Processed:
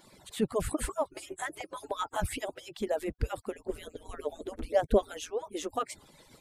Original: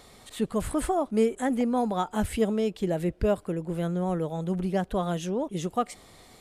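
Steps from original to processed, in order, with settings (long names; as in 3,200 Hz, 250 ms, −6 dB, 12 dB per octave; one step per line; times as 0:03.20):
harmonic-percussive split with one part muted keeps percussive
0:03.66–0:05.14: low shelf with overshoot 670 Hz +7 dB, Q 1.5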